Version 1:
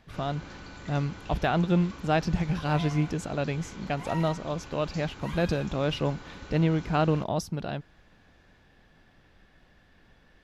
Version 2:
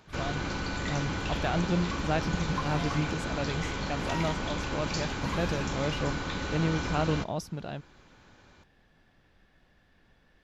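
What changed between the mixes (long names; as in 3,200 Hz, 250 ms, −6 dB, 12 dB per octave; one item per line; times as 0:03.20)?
speech −4.5 dB
first sound +11.5 dB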